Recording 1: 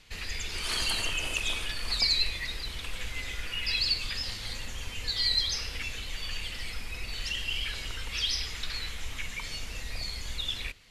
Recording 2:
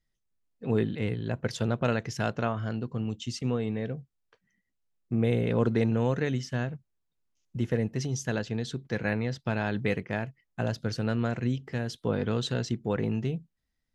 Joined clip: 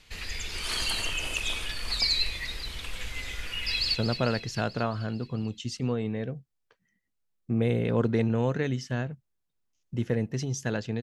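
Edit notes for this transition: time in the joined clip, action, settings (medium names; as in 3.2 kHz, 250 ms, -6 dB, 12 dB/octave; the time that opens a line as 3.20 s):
recording 1
3.67–3.95 s: echo throw 220 ms, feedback 65%, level -9.5 dB
3.95 s: go over to recording 2 from 1.57 s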